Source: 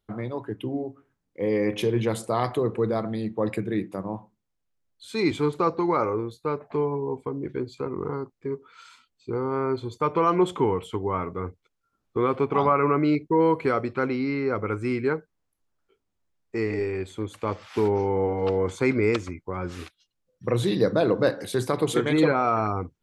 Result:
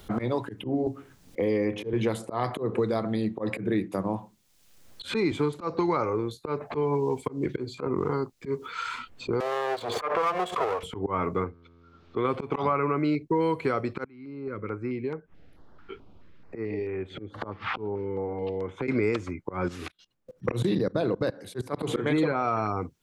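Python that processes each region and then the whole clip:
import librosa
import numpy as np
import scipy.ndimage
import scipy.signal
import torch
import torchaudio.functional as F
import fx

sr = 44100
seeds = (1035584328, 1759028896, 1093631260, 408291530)

y = fx.chain(x, sr, fx.high_shelf(hz=2000.0, db=-8.5),
    fx.band_squash(depth_pct=40), at=(0.86, 1.93))
y = fx.chain(y, sr, fx.lower_of_two(delay_ms=1.8),
    fx.highpass(hz=530.0, slope=12),
    fx.pre_swell(db_per_s=89.0), at=(9.4, 10.83))
y = fx.chain(y, sr, fx.lowpass(hz=4200.0, slope=24),
    fx.comb_fb(f0_hz=85.0, decay_s=1.5, harmonics='all', damping=0.0, mix_pct=40), at=(11.44, 12.25))
y = fx.chain(y, sr, fx.air_absorb(metres=350.0),
    fx.gate_flip(shuts_db=-31.0, range_db=-26),
    fx.filter_held_notch(hz=4.6, low_hz=570.0, high_hz=4400.0), at=(14.04, 18.88))
y = fx.chain(y, sr, fx.low_shelf(hz=270.0, db=5.0),
    fx.level_steps(step_db=23), at=(19.68, 21.81))
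y = fx.auto_swell(y, sr, attack_ms=209.0)
y = fx.band_squash(y, sr, depth_pct=100)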